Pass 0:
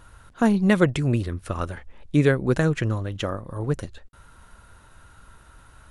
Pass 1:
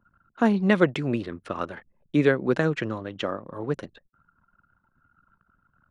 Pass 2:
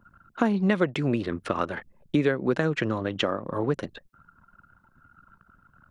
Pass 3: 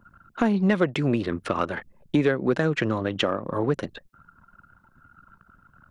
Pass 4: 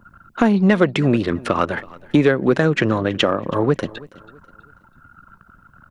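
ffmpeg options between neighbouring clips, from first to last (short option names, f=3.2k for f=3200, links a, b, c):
-filter_complex "[0:a]anlmdn=0.0398,acrossover=split=160 5200:gain=0.0708 1 0.126[a][b][c];[a][b][c]amix=inputs=3:normalize=0"
-af "acompressor=threshold=-31dB:ratio=3,volume=8dB"
-af "asoftclip=type=tanh:threshold=-11dB,volume=2.5dB"
-af "aecho=1:1:326|652|978:0.0841|0.0311|0.0115,volume=6.5dB"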